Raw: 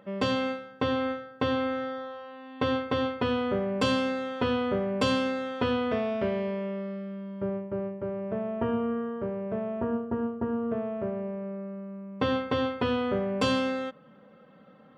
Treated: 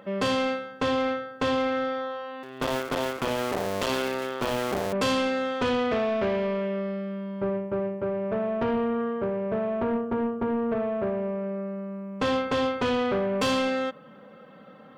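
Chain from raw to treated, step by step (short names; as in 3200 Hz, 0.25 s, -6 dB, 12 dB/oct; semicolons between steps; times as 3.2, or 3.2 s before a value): 2.43–4.93 cycle switcher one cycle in 2, muted; low shelf 220 Hz -6 dB; soft clip -28.5 dBFS, distortion -11 dB; gain +7.5 dB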